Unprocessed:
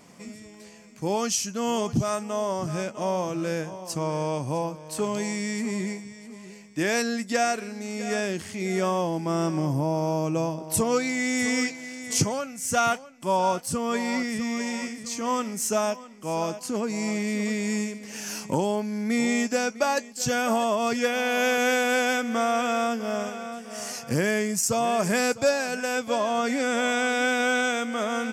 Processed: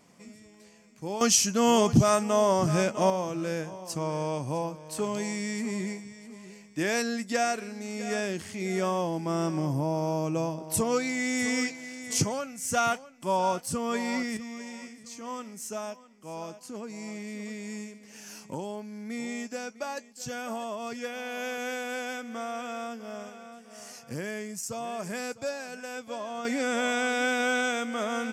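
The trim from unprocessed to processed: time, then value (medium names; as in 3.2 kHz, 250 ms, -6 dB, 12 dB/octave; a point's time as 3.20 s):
-7.5 dB
from 1.21 s +4.5 dB
from 3.10 s -3 dB
from 14.37 s -11 dB
from 26.45 s -3 dB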